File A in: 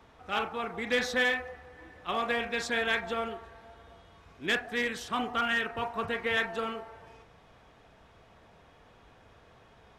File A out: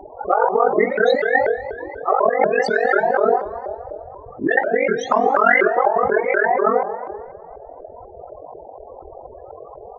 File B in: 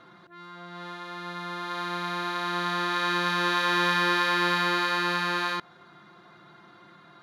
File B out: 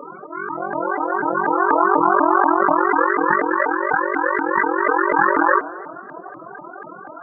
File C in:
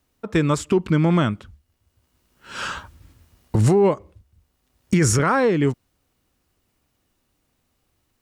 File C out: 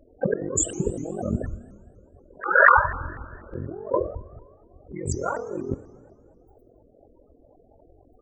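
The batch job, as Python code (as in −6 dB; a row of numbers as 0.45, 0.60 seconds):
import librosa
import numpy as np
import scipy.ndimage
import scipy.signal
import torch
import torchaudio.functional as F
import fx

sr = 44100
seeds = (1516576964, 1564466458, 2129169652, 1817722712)

y = x * np.sin(2.0 * np.pi * 22.0 * np.arange(len(x)) / sr)
y = fx.peak_eq(y, sr, hz=530.0, db=10.5, octaves=1.8)
y = fx.spec_topn(y, sr, count=16)
y = fx.over_compress(y, sr, threshold_db=-32.0, ratio=-1.0)
y = fx.peak_eq(y, sr, hz=160.0, db=-9.0, octaves=1.9)
y = fx.rev_schroeder(y, sr, rt60_s=1.7, comb_ms=27, drr_db=14.5)
y = fx.vibrato_shape(y, sr, shape='saw_up', rate_hz=4.1, depth_cents=250.0)
y = y * 10.0 ** (-1.5 / 20.0) / np.max(np.abs(y))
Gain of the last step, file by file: +17.0, +15.5, +7.5 decibels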